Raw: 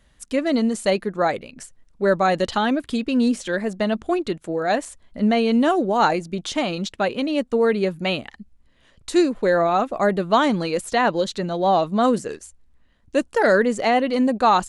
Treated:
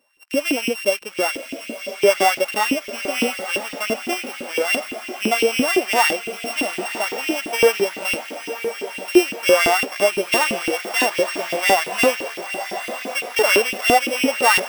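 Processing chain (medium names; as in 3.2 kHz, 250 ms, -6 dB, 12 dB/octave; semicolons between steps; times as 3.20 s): sorted samples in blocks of 16 samples; echo that smears into a reverb 1013 ms, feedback 63%, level -10 dB; harmonic-percussive split percussive -14 dB; in parallel at -10 dB: bit crusher 6-bit; on the sum: LFO high-pass saw up 5.9 Hz 290–2900 Hz; trim -1 dB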